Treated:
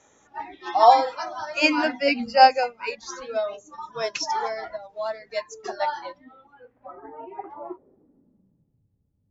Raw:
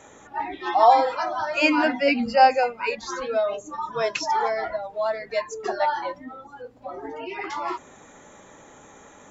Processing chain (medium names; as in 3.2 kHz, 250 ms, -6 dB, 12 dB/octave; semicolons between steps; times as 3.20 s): low-pass sweep 6 kHz -> 110 Hz, 5.92–8.86 s; upward expansion 1.5:1, over -38 dBFS; trim +2 dB